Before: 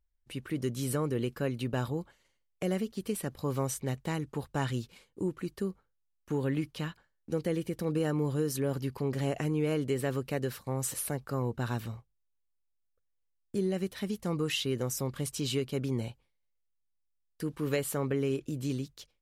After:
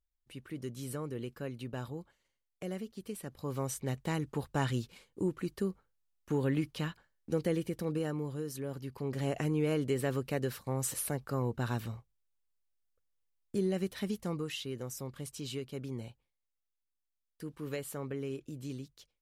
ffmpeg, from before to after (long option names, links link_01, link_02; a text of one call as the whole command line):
ffmpeg -i in.wav -af "volume=7dB,afade=type=in:start_time=3.24:duration=0.97:silence=0.398107,afade=type=out:start_time=7.47:duration=0.83:silence=0.398107,afade=type=in:start_time=8.85:duration=0.55:silence=0.446684,afade=type=out:start_time=14.11:duration=0.4:silence=0.446684" out.wav